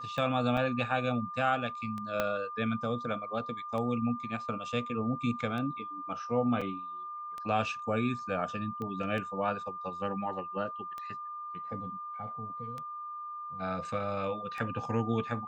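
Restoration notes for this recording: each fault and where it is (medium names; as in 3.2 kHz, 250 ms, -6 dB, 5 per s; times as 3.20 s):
tick 33 1/3 rpm -26 dBFS
whine 1.2 kHz -38 dBFS
0.57–0.58 s: dropout 5.4 ms
2.20 s: pop -15 dBFS
6.61–6.62 s: dropout 5.1 ms
8.82 s: pop -27 dBFS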